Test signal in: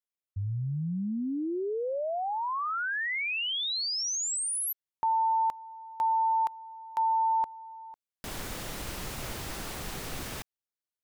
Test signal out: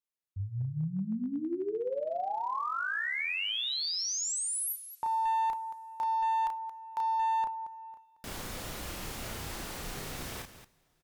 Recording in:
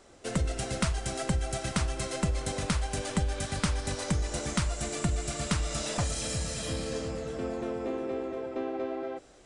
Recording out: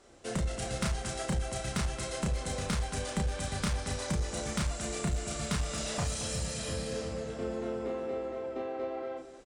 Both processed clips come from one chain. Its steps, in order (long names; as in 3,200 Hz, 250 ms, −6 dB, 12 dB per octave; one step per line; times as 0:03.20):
loudspeakers that aren't time-aligned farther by 11 metres −3 dB, 77 metres −11 dB
asymmetric clip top −23.5 dBFS
coupled-rooms reverb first 0.36 s, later 3.5 s, from −18 dB, DRR 17 dB
level −4 dB